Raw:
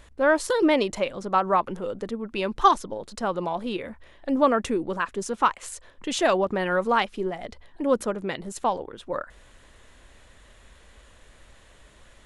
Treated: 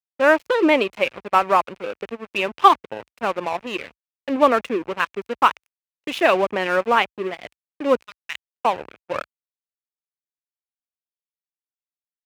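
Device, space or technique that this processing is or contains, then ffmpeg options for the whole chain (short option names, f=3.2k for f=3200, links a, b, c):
pocket radio on a weak battery: -filter_complex "[0:a]asettb=1/sr,asplit=3[a][b][c];[a]atrim=end=8.034[d];[b]atrim=start=8.03:end=8.65,asetpts=PTS-STARTPTS,afade=t=in:d=0.004:c=qsin,afade=t=out:st=0.616:d=0.004:c=qsin,highpass=f=1.3k:w=0.5412,highpass=f=1.3k:w=1.3066[e];[c]atrim=start=8.646[f];[d][e]acrossfade=d=0.004:c1=hsin:c2=qsin[g];[g][f]acrossfade=d=0.004:c1=qsin:c2=hsin,highpass=260,lowpass=3.5k,aeval=exprs='sgn(val(0))*max(abs(val(0))-0.015,0)':c=same,equalizer=f=2.5k:t=o:w=0.54:g=9,agate=range=-33dB:threshold=-47dB:ratio=3:detection=peak,highpass=f=54:w=0.5412,highpass=f=54:w=1.3066,adynamicequalizer=threshold=0.0224:dfrequency=1700:dqfactor=0.7:tfrequency=1700:tqfactor=0.7:attack=5:release=100:ratio=0.375:range=2:mode=cutabove:tftype=highshelf,volume=5.5dB"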